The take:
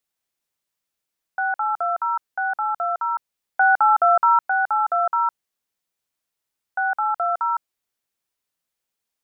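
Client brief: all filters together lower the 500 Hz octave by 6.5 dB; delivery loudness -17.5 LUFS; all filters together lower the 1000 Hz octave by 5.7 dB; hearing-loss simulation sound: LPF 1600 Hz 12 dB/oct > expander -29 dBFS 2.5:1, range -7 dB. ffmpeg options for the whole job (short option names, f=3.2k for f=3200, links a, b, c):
-af "lowpass=1.6k,equalizer=f=500:t=o:g=-8.5,equalizer=f=1k:t=o:g=-4,agate=range=-7dB:threshold=-29dB:ratio=2.5,volume=9dB"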